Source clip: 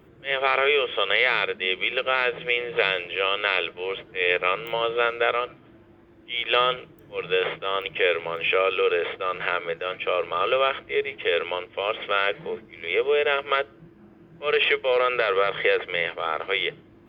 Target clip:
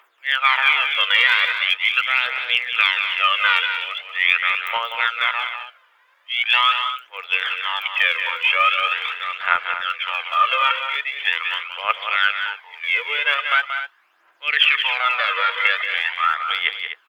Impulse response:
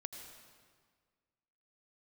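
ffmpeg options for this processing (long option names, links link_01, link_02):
-af "highpass=frequency=1000:width=0.5412,highpass=frequency=1000:width=1.3066,aphaser=in_gain=1:out_gain=1:delay=2.2:decay=0.67:speed=0.42:type=triangular,aecho=1:1:180.8|247.8:0.398|0.282,volume=4dB"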